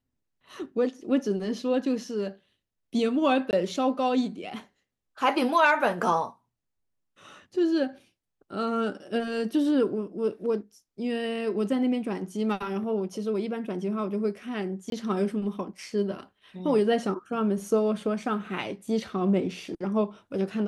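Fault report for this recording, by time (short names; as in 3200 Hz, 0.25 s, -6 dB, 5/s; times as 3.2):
3.51–3.53 gap 19 ms
14.9–14.92 gap 22 ms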